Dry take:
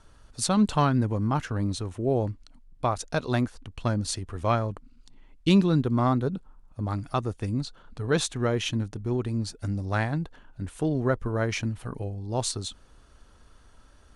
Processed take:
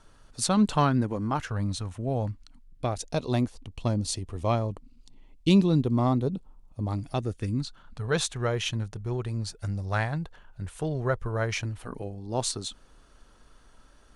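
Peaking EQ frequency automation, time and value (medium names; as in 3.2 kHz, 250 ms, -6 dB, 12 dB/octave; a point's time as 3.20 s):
peaking EQ -11.5 dB 0.66 oct
0.95 s 64 Hz
1.63 s 370 Hz
2.30 s 370 Hz
3.11 s 1.5 kHz
7.01 s 1.5 kHz
8.15 s 270 Hz
11.58 s 270 Hz
12.06 s 80 Hz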